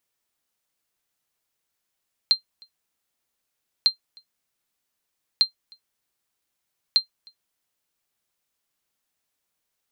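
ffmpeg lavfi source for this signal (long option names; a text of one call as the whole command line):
ffmpeg -f lavfi -i "aevalsrc='0.398*(sin(2*PI*4160*mod(t,1.55))*exp(-6.91*mod(t,1.55)/0.11)+0.0316*sin(2*PI*4160*max(mod(t,1.55)-0.31,0))*exp(-6.91*max(mod(t,1.55)-0.31,0)/0.11))':duration=6.2:sample_rate=44100" out.wav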